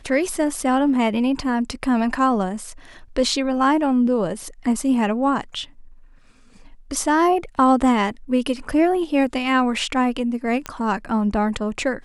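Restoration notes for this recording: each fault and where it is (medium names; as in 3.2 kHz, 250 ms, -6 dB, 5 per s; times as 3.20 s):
10.66 s: pop -12 dBFS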